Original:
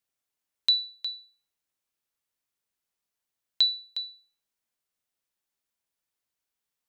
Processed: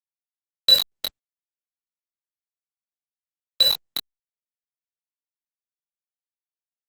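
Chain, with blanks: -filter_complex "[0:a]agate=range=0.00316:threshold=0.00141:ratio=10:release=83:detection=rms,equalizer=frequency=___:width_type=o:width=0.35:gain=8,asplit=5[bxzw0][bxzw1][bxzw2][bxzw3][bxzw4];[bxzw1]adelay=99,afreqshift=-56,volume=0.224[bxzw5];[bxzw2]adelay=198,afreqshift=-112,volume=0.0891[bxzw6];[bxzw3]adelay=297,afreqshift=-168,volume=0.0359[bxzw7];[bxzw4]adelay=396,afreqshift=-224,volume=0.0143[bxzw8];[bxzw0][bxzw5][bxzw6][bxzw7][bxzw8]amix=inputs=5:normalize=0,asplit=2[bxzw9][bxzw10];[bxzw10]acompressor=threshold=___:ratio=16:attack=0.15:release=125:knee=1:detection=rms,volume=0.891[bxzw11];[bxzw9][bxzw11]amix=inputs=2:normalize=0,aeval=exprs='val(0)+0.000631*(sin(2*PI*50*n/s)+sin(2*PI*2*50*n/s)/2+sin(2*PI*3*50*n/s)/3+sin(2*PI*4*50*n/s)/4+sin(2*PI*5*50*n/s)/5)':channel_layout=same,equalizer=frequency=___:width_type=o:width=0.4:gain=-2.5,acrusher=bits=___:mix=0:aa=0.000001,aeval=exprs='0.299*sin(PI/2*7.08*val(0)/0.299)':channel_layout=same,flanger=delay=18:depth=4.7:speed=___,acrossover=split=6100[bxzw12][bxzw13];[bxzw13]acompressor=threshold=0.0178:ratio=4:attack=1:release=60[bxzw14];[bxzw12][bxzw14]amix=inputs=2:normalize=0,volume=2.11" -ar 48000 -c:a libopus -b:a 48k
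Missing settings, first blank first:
1300, 0.02, 280, 3, 0.4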